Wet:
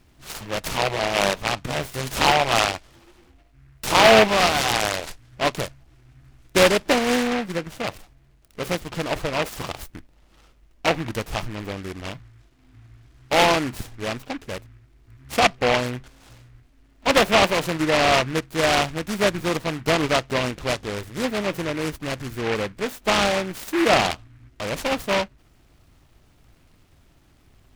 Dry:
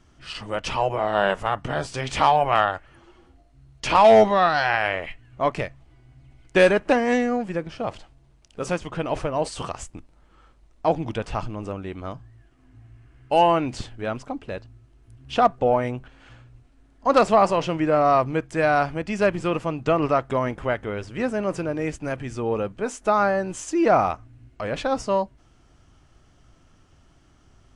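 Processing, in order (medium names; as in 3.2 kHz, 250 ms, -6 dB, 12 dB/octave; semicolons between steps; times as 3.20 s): delay time shaken by noise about 1.6 kHz, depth 0.16 ms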